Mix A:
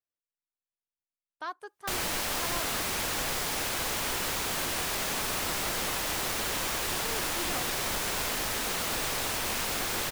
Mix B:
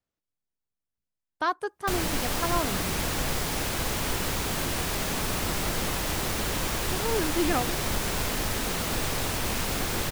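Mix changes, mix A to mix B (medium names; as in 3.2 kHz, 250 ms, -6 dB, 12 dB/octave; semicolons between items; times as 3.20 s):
speech +9.5 dB; master: add bass shelf 320 Hz +11.5 dB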